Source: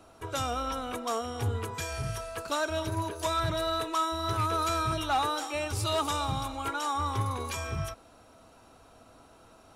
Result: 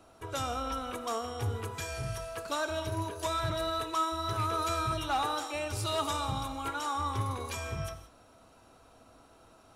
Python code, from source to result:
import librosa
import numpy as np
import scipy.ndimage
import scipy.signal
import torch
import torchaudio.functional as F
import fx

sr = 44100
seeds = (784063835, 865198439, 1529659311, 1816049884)

y = fx.rev_gated(x, sr, seeds[0], gate_ms=200, shape='flat', drr_db=10.0)
y = y * 10.0 ** (-3.0 / 20.0)